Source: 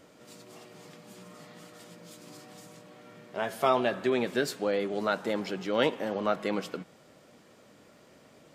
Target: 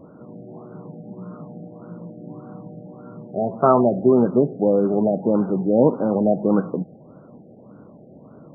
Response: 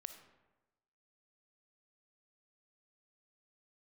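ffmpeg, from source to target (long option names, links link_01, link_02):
-af "equalizer=frequency=160:width_type=o:width=2.2:gain=9.5,afftfilt=real='re*lt(b*sr/1024,790*pow(1600/790,0.5+0.5*sin(2*PI*1.7*pts/sr)))':imag='im*lt(b*sr/1024,790*pow(1600/790,0.5+0.5*sin(2*PI*1.7*pts/sr)))':win_size=1024:overlap=0.75,volume=7.5dB"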